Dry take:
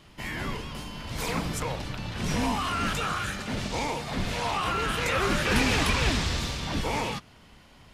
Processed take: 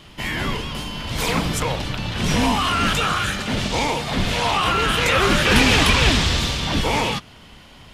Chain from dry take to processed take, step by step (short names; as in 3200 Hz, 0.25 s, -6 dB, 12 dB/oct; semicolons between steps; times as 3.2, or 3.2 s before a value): bell 3200 Hz +4.5 dB 0.55 oct; gain +8 dB